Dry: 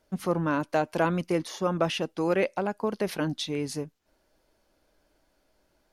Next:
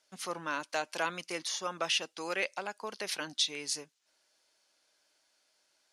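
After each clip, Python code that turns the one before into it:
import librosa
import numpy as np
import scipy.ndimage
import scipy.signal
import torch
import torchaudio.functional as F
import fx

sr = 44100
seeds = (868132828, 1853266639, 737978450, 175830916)

y = fx.weighting(x, sr, curve='ITU-R 468')
y = F.gain(torch.from_numpy(y), -6.0).numpy()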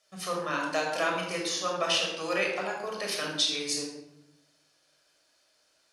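y = fx.room_shoebox(x, sr, seeds[0], volume_m3=3000.0, walls='furnished', distance_m=6.1)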